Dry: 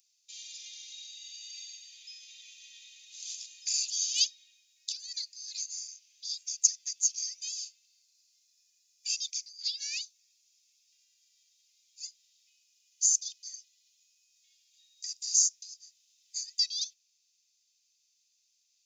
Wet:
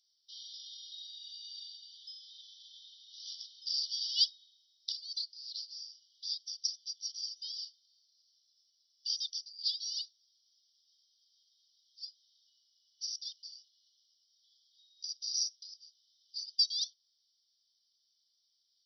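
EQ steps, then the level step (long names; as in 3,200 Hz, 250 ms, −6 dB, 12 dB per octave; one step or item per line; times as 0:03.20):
linear-phase brick-wall band-pass 2,900–5,900 Hz
0.0 dB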